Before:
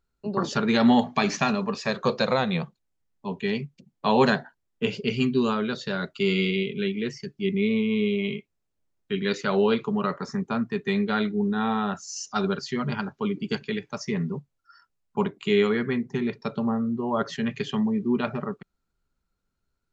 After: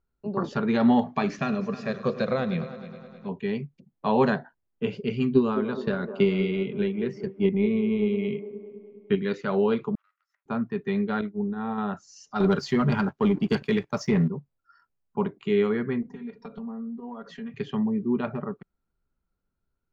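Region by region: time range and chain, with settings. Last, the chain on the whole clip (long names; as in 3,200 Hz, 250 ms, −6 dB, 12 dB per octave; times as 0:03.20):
0:01.28–0:03.29: parametric band 890 Hz −13 dB 0.34 octaves + echo machine with several playback heads 104 ms, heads first and third, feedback 60%, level −16 dB
0:05.31–0:09.22: high-shelf EQ 5,100 Hz −6 dB + transient designer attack +8 dB, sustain +2 dB + delay with a band-pass on its return 206 ms, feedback 57%, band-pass 540 Hz, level −8.5 dB
0:09.95–0:10.46: lower of the sound and its delayed copy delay 1.5 ms + gate with flip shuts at −26 dBFS, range −31 dB + inverse Chebyshev high-pass filter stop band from 310 Hz, stop band 70 dB
0:11.21–0:11.78: downward expander −22 dBFS + high-shelf EQ 4,100 Hz −11 dB
0:12.40–0:14.28: high-shelf EQ 5,300 Hz +11.5 dB + leveller curve on the samples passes 2
0:16.02–0:17.54: downward compressor 10 to 1, threshold −36 dBFS + mains-hum notches 50/100/150/200/250/300 Hz + comb filter 4.2 ms, depth 96%
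whole clip: low-pass filter 3,100 Hz 6 dB per octave; high-shelf EQ 2,300 Hz −8.5 dB; level −1 dB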